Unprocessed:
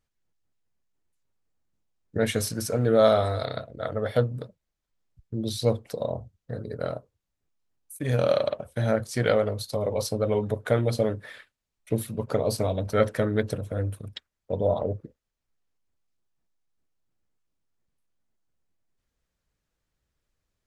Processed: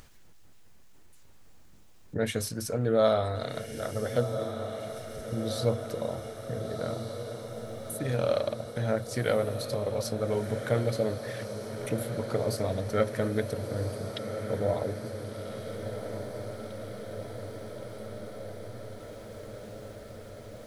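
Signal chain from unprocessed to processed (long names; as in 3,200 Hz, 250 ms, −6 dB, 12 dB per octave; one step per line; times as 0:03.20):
upward compression, threshold −26 dBFS
feedback delay with all-pass diffusion 1,460 ms, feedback 75%, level −8.5 dB
level −4.5 dB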